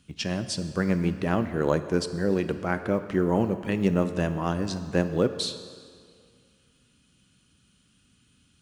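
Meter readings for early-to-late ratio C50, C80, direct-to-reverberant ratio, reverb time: 11.5 dB, 12.5 dB, 10.0 dB, 2.1 s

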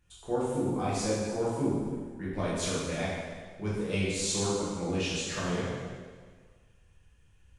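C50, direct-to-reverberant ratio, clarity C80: −2.0 dB, −9.0 dB, 1.0 dB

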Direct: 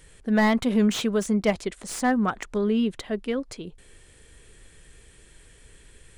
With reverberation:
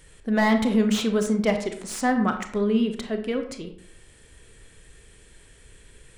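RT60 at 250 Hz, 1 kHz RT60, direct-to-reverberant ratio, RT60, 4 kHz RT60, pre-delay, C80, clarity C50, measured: 0.65 s, 0.55 s, 6.0 dB, 0.60 s, 0.40 s, 26 ms, 12.0 dB, 9.0 dB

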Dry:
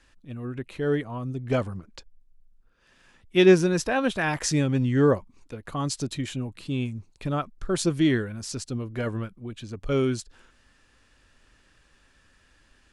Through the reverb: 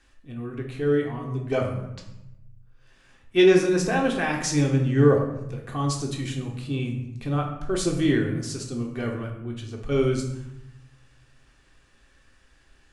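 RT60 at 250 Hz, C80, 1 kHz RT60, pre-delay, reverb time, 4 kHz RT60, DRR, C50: 1.1 s, 9.0 dB, 0.80 s, 3 ms, 0.85 s, 0.60 s, −0.5 dB, 5.5 dB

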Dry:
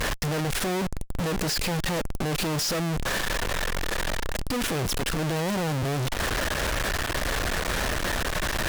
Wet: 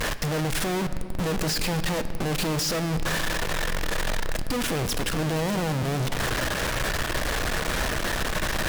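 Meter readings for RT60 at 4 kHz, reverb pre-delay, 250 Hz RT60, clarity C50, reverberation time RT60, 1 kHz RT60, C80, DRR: 1.6 s, 4 ms, 4.6 s, 12.0 dB, 2.7 s, 2.4 s, 13.0 dB, 10.5 dB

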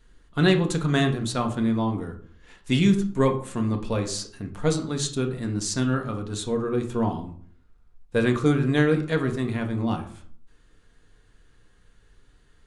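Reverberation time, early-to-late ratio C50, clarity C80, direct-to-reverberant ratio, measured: 0.50 s, 10.5 dB, 14.5 dB, 4.0 dB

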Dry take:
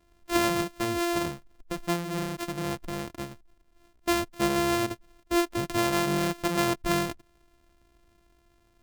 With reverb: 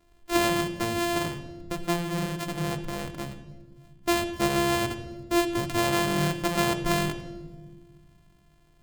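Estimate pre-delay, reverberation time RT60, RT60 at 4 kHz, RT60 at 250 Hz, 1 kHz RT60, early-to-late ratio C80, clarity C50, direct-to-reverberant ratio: 3 ms, 1.3 s, 1.0 s, 2.1 s, 1.1 s, 12.5 dB, 10.5 dB, 8.0 dB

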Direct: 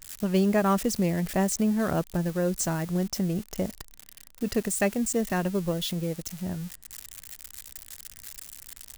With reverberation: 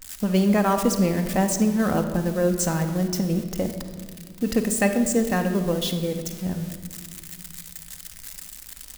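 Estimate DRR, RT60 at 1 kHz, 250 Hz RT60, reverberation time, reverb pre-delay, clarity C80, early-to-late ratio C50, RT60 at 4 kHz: 5.0 dB, 1.4 s, 2.8 s, 1.7 s, 4 ms, 10.0 dB, 8.0 dB, 1.3 s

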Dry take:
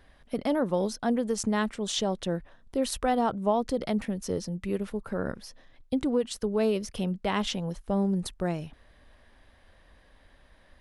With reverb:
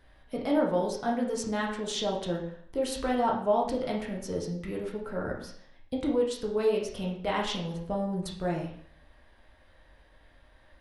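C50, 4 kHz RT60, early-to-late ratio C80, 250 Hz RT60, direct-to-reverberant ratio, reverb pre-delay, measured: 5.5 dB, 0.55 s, 9.0 dB, 0.65 s, −2.0 dB, 5 ms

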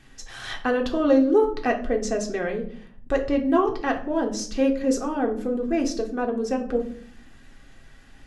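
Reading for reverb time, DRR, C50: 0.55 s, 1.0 dB, 11.0 dB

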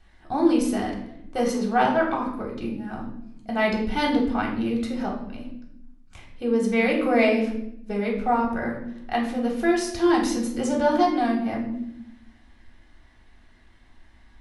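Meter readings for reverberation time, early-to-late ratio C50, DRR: 0.75 s, 6.0 dB, −2.5 dB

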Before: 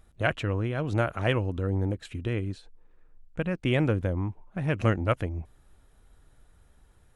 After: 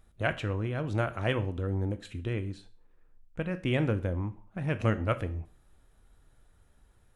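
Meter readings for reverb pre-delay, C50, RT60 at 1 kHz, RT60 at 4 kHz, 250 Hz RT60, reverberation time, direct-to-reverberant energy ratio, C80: 6 ms, 16.5 dB, 0.40 s, 0.40 s, 0.40 s, 0.45 s, 11.0 dB, 21.0 dB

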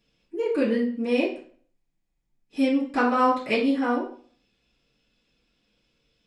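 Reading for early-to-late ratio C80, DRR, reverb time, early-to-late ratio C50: 12.0 dB, −10.5 dB, 0.45 s, 6.5 dB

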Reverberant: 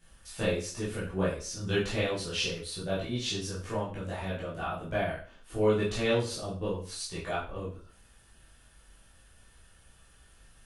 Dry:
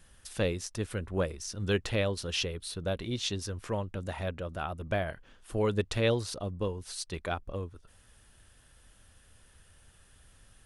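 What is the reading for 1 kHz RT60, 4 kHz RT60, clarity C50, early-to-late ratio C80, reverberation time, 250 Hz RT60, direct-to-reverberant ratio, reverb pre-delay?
0.40 s, 0.40 s, 5.0 dB, 10.0 dB, 0.40 s, 0.40 s, −10.0 dB, 6 ms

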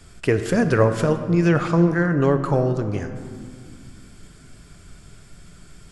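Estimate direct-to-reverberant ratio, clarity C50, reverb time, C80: 7.5 dB, 9.5 dB, 2.2 s, 10.5 dB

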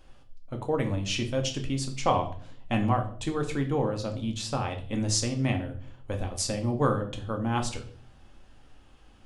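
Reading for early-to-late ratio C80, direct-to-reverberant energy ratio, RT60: 15.5 dB, 3.5 dB, 0.50 s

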